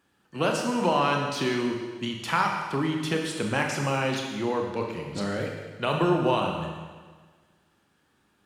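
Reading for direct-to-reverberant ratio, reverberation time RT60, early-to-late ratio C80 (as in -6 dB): 1.0 dB, 1.5 s, 4.5 dB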